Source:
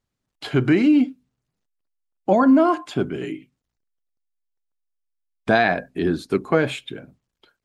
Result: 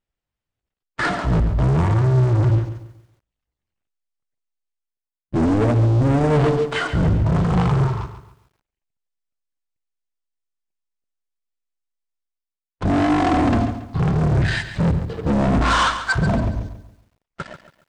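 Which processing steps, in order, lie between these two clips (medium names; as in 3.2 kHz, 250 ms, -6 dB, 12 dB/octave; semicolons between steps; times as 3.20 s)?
reverse; compression 12:1, threshold -29 dBFS, peak gain reduction 18 dB; reverse; harmony voices -12 st -17 dB; waveshaping leveller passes 5; speed mistake 78 rpm record played at 33 rpm; bit-crushed delay 139 ms, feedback 35%, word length 10-bit, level -11 dB; trim +5 dB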